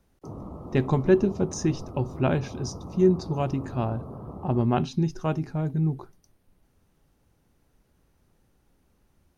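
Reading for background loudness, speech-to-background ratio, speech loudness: -40.5 LUFS, 14.0 dB, -26.5 LUFS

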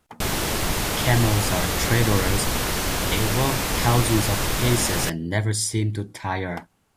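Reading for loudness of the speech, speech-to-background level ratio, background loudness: -24.5 LUFS, -0.5 dB, -24.0 LUFS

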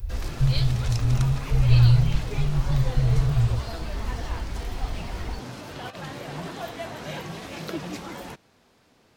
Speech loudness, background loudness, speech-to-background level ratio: -23.5 LUFS, -35.5 LUFS, 12.0 dB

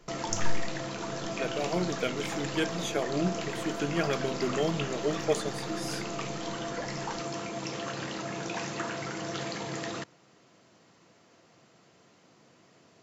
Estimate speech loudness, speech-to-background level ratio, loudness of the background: -33.0 LUFS, 2.0 dB, -35.0 LUFS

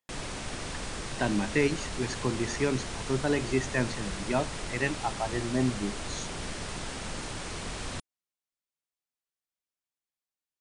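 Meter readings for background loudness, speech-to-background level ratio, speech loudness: -37.0 LUFS, 6.0 dB, -31.0 LUFS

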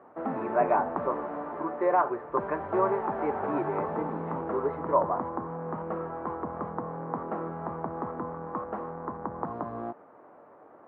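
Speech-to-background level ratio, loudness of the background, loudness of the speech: 4.5 dB, -35.0 LUFS, -30.5 LUFS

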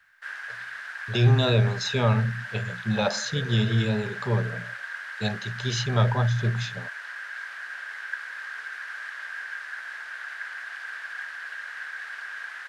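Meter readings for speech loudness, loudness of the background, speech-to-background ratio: -25.5 LUFS, -35.5 LUFS, 10.0 dB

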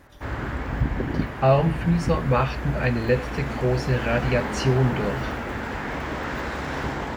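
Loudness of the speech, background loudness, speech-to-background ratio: -23.5 LUFS, -29.5 LUFS, 6.0 dB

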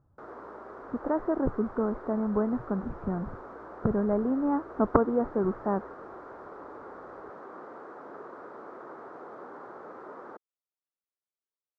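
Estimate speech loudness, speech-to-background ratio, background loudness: -29.5 LUFS, 15.5 dB, -45.0 LUFS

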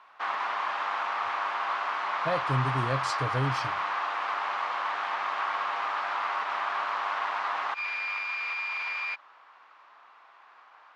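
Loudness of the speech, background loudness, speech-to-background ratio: -32.0 LUFS, -30.0 LUFS, -2.0 dB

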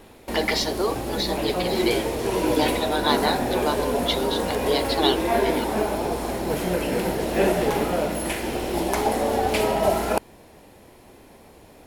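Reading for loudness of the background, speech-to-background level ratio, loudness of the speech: -24.5 LUFS, -2.5 dB, -27.0 LUFS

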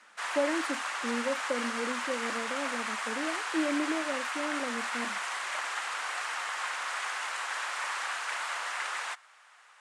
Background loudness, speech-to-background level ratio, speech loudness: -33.5 LUFS, -2.0 dB, -35.5 LUFS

